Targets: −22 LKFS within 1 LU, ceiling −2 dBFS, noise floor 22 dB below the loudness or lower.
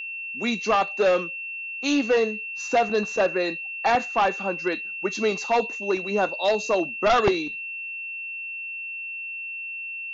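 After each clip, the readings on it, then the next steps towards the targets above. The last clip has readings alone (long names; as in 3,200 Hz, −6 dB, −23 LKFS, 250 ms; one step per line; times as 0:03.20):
interfering tone 2,700 Hz; level of the tone −31 dBFS; integrated loudness −25.0 LKFS; sample peak −9.5 dBFS; target loudness −22.0 LKFS
→ notch filter 2,700 Hz, Q 30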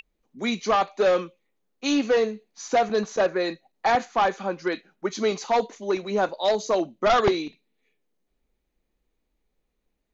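interfering tone none found; integrated loudness −24.5 LKFS; sample peak −10.0 dBFS; target loudness −22.0 LKFS
→ level +2.5 dB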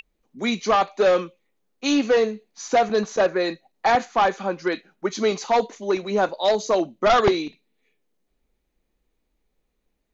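integrated loudness −22.0 LKFS; sample peak −7.5 dBFS; background noise floor −75 dBFS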